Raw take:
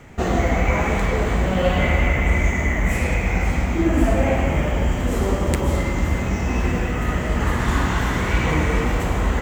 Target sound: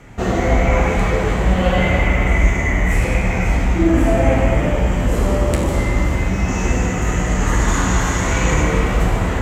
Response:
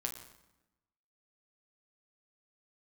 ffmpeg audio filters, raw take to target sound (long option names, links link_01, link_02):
-filter_complex "[0:a]asettb=1/sr,asplit=3[link_01][link_02][link_03];[link_01]atrim=end=6.484[link_04];[link_02]atrim=start=6.48:end=8.62,asetpts=PTS-STARTPTS,afade=type=in:duration=0.004:curve=qsin,afade=type=out:start_time=2.136:duration=0.004:curve=qsin,equalizer=frequency=6700:width_type=o:width=0.34:gain=14[link_05];[link_03]atrim=start=8.616[link_06];[link_04][link_05]acrossfade=duration=0.004:curve1=hsin:curve2=qsin[link_07];[link_07][link_06]acrossfade=duration=0.004:curve1=qsin:curve2=hsin[link_08];[1:a]atrim=start_sample=2205,asetrate=26019,aresample=44100[link_09];[link_08][link_09]afir=irnorm=-1:irlink=0,volume=-1dB"